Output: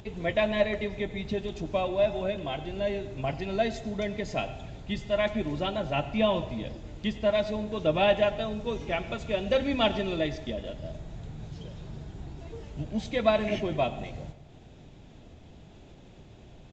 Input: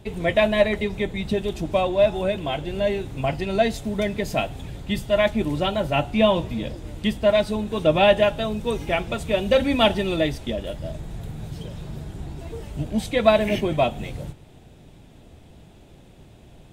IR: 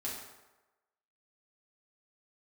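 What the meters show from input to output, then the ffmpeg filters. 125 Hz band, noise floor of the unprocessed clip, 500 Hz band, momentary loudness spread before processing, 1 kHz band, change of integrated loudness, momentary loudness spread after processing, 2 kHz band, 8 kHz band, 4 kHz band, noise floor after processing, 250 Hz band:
-7.0 dB, -49 dBFS, -6.5 dB, 16 LU, -6.5 dB, -7.0 dB, 16 LU, -7.0 dB, n/a, -7.0 dB, -51 dBFS, -7.0 dB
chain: -filter_complex "[0:a]acompressor=mode=upward:threshold=-36dB:ratio=2.5,asplit=2[a][b];[1:a]atrim=start_sample=2205,adelay=90[c];[b][c]afir=irnorm=-1:irlink=0,volume=-15dB[d];[a][d]amix=inputs=2:normalize=0,aresample=16000,aresample=44100,volume=-7dB"

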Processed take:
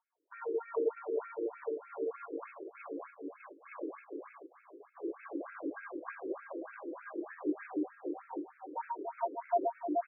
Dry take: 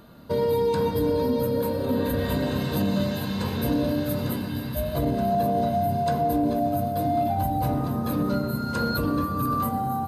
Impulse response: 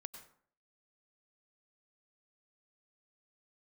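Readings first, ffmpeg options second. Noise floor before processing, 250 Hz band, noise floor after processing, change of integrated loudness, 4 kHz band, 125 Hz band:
-31 dBFS, -16.0 dB, -64 dBFS, -14.5 dB, under -40 dB, under -40 dB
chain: -filter_complex "[0:a]asplit=2[a][b];[b]highpass=f=720:p=1,volume=12dB,asoftclip=type=tanh:threshold=-13.5dB[c];[a][c]amix=inputs=2:normalize=0,lowpass=f=2.4k:p=1,volume=-6dB,agate=range=-29dB:threshold=-23dB:ratio=16:detection=peak,afreqshift=-480,asplit=2[d][e];[e]adelay=427,lowpass=f=3.3k:p=1,volume=-4dB,asplit=2[f][g];[g]adelay=427,lowpass=f=3.3k:p=1,volume=0.41,asplit=2[h][i];[i]adelay=427,lowpass=f=3.3k:p=1,volume=0.41,asplit=2[j][k];[k]adelay=427,lowpass=f=3.3k:p=1,volume=0.41,asplit=2[l][m];[m]adelay=427,lowpass=f=3.3k:p=1,volume=0.41[n];[f][h][j][l][n]amix=inputs=5:normalize=0[o];[d][o]amix=inputs=2:normalize=0,afftfilt=real='re*between(b*sr/1024,370*pow(1900/370,0.5+0.5*sin(2*PI*3.3*pts/sr))/1.41,370*pow(1900/370,0.5+0.5*sin(2*PI*3.3*pts/sr))*1.41)':imag='im*between(b*sr/1024,370*pow(1900/370,0.5+0.5*sin(2*PI*3.3*pts/sr))/1.41,370*pow(1900/370,0.5+0.5*sin(2*PI*3.3*pts/sr))*1.41)':win_size=1024:overlap=0.75,volume=-1dB"

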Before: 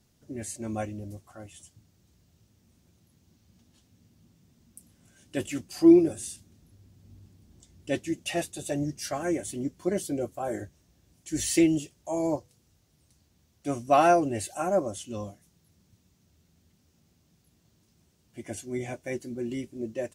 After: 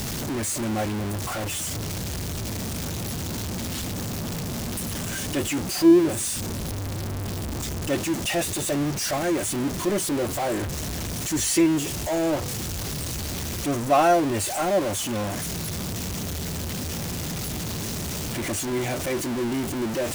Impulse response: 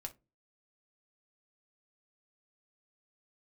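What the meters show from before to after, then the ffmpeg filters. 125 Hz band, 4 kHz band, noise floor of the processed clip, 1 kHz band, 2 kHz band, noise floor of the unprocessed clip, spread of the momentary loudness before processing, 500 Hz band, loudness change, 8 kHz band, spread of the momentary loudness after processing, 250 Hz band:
+11.0 dB, +12.5 dB, -30 dBFS, +3.5 dB, +8.0 dB, -67 dBFS, 19 LU, +3.5 dB, +2.0 dB, +11.0 dB, 10 LU, +3.5 dB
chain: -af "aeval=exprs='val(0)+0.5*0.0631*sgn(val(0))':c=same"

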